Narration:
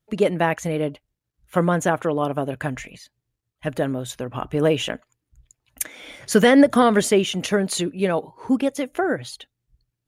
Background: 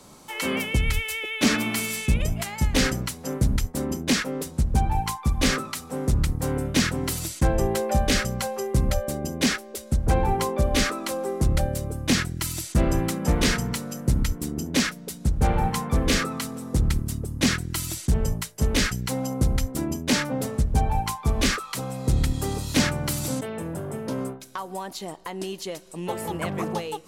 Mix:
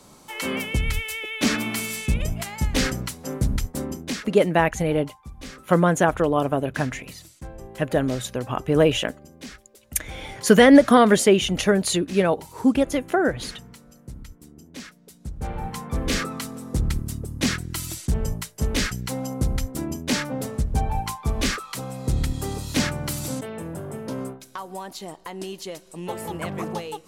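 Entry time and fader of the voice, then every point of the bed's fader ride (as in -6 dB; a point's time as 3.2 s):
4.15 s, +1.5 dB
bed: 3.79 s -1 dB
4.65 s -17.5 dB
14.72 s -17.5 dB
16.21 s -1.5 dB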